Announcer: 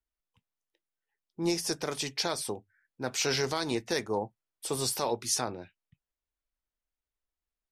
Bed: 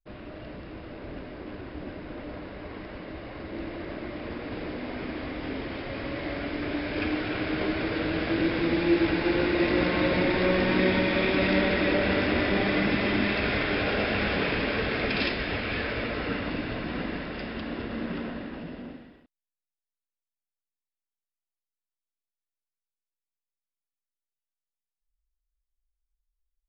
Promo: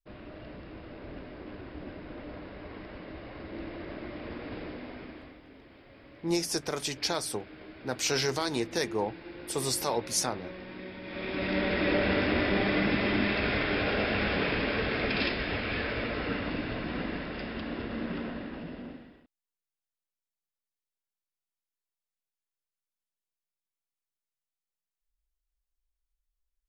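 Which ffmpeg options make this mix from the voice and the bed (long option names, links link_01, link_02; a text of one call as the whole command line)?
ffmpeg -i stem1.wav -i stem2.wav -filter_complex "[0:a]adelay=4850,volume=0.5dB[link_01];[1:a]volume=13.5dB,afade=type=out:start_time=4.52:duration=0.91:silence=0.16788,afade=type=in:start_time=11.01:duration=0.93:silence=0.133352[link_02];[link_01][link_02]amix=inputs=2:normalize=0" out.wav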